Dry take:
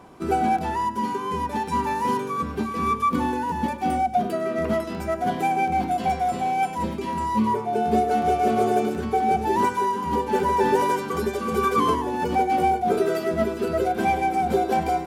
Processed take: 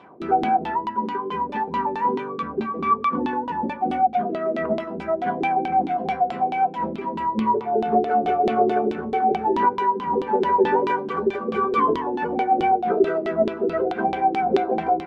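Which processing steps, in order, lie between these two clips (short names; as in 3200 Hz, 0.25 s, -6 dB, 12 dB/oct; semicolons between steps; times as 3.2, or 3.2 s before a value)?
HPF 150 Hz 12 dB/oct; notches 60/120/180/240/300 Hz; LFO low-pass saw down 4.6 Hz 300–3700 Hz; 2.06–4.03 brick-wall FIR low-pass 9900 Hz; gain -1.5 dB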